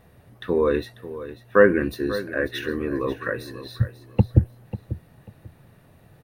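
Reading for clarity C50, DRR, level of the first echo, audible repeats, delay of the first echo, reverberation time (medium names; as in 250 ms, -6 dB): no reverb, no reverb, -14.0 dB, 2, 542 ms, no reverb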